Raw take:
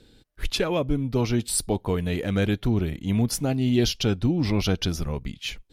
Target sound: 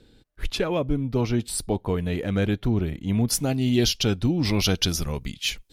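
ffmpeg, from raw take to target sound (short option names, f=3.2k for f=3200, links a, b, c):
-af "asetnsamples=n=441:p=0,asendcmd='3.28 highshelf g 5;4.45 highshelf g 10',highshelf=f=2.9k:g=-4.5"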